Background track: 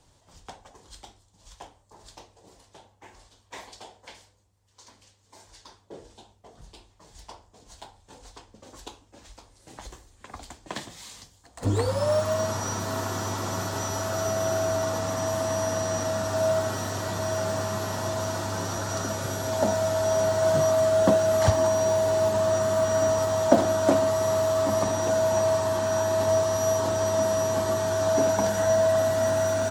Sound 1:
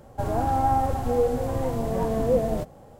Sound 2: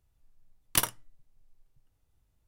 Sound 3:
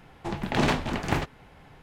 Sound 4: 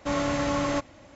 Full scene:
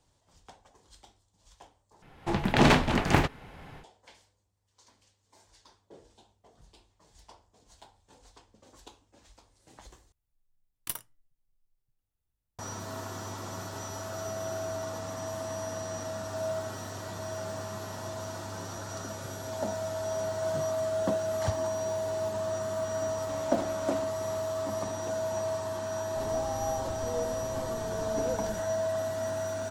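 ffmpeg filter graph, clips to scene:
-filter_complex "[0:a]volume=0.355[s0];[3:a]dynaudnorm=f=160:g=3:m=2.51[s1];[2:a]highshelf=f=11000:g=9[s2];[4:a]acompressor=threshold=0.01:ratio=6:attack=3.2:release=140:knee=1:detection=peak[s3];[s0]asplit=3[s4][s5][s6];[s4]atrim=end=2.024[s7];[s1]atrim=end=1.82,asetpts=PTS-STARTPTS,volume=0.668[s8];[s5]atrim=start=3.836:end=10.124[s9];[s2]atrim=end=2.47,asetpts=PTS-STARTPTS,volume=0.211[s10];[s6]atrim=start=12.586[s11];[s3]atrim=end=1.15,asetpts=PTS-STARTPTS,volume=0.794,afade=t=in:d=0.004:c=hsin,afade=t=out:st=1.146:d=0.004:c=hsin,adelay=1024884S[s12];[1:a]atrim=end=2.99,asetpts=PTS-STARTPTS,volume=0.2,afade=t=in:d=0.004:c=hsin,afade=t=out:st=2.986:d=0.004:c=hsin,adelay=25970[s13];[s7][s8]acrossfade=d=0.004:c1=hsin:c2=hsin[s14];[s14][s9]acrossfade=d=0.004:c1=hsin:c2=hsin[s15];[s15][s10]acrossfade=d=0.004:c1=hsin:c2=hsin[s16];[s16][s11]acrossfade=d=0.004:c1=hsin:c2=hsin[s17];[s17][s12][s13]amix=inputs=3:normalize=0"

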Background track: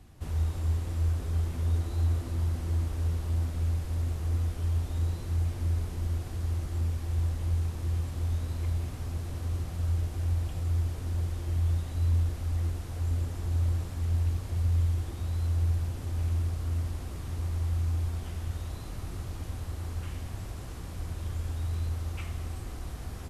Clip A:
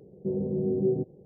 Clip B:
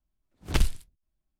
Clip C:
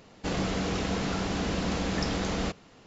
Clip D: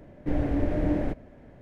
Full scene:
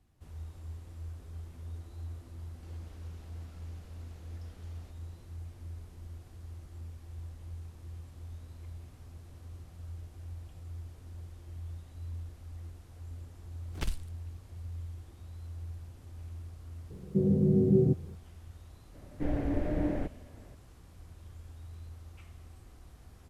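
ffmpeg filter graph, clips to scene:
-filter_complex "[0:a]volume=0.178[s0];[3:a]acompressor=threshold=0.01:ratio=6:attack=3.2:release=140:knee=1:detection=peak[s1];[1:a]bass=f=250:g=13,treble=f=4000:g=13[s2];[s1]atrim=end=2.86,asetpts=PTS-STARTPTS,volume=0.133,afade=t=in:d=0.004:c=hsin,afade=t=out:st=2.856:d=0.004:c=hsin,adelay=2390[s3];[2:a]atrim=end=1.39,asetpts=PTS-STARTPTS,volume=0.299,afade=t=in:d=0.004:c=hsin,afade=t=out:st=1.386:d=0.004:c=hsin,adelay=13270[s4];[s2]atrim=end=1.25,asetpts=PTS-STARTPTS,volume=0.668,afade=t=in:d=0.004:c=hsin,afade=t=out:st=1.246:d=0.004:c=hsin,adelay=16900[s5];[4:a]atrim=end=1.61,asetpts=PTS-STARTPTS,volume=0.562,afade=t=in:d=0.004:c=hsin,afade=t=out:st=1.606:d=0.004:c=hsin,adelay=18940[s6];[s0][s3][s4][s5][s6]amix=inputs=5:normalize=0"

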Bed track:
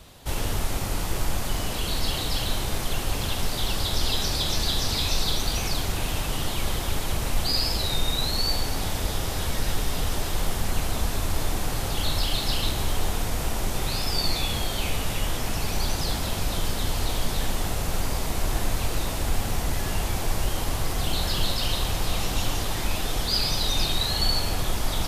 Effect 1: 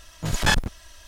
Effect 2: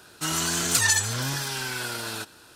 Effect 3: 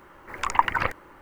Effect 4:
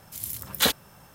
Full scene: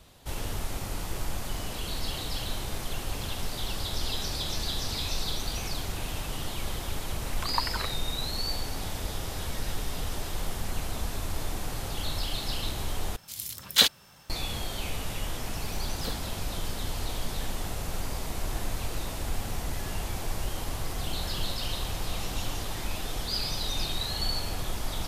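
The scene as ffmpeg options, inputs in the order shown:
-filter_complex "[4:a]asplit=2[s0][s1];[0:a]volume=0.473[s2];[s0]equalizer=f=4100:t=o:w=2:g=11[s3];[s1]tiltshelf=f=970:g=6[s4];[s2]asplit=2[s5][s6];[s5]atrim=end=13.164[s7];[s3]atrim=end=1.14,asetpts=PTS-STARTPTS,volume=0.501[s8];[s6]atrim=start=14.296[s9];[3:a]atrim=end=1.21,asetpts=PTS-STARTPTS,volume=0.299,afade=t=in:d=0.004:c=hsin,afade=t=out:st=1.206:d=0.004:c=hsin,adelay=6990[s10];[s4]atrim=end=1.14,asetpts=PTS-STARTPTS,volume=0.15,afade=t=in:d=0.004:c=hsin,afade=t=out:st=1.136:d=0.004:c=hsin,adelay=15420[s11];[s7][s8]acrossfade=d=0.004:c1=hsin:c2=hsin[s12];[s12][s9]acrossfade=d=0.004:c1=hsin:c2=hsin[s13];[s13][s10][s11]amix=inputs=3:normalize=0"

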